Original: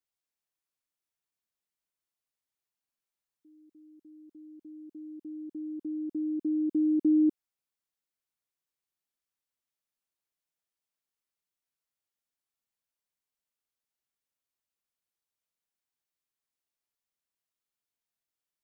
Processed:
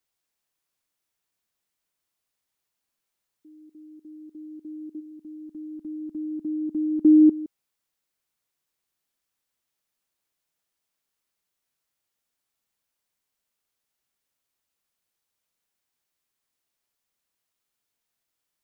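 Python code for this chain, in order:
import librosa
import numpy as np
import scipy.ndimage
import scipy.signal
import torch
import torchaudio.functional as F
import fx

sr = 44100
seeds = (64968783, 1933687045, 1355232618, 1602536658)

y = fx.peak_eq(x, sr, hz=400.0, db=-11.5, octaves=1.4, at=(4.99, 7.03), fade=0.02)
y = y + 10.0 ** (-18.0 / 20.0) * np.pad(y, (int(165 * sr / 1000.0), 0))[:len(y)]
y = F.gain(torch.from_numpy(y), 8.5).numpy()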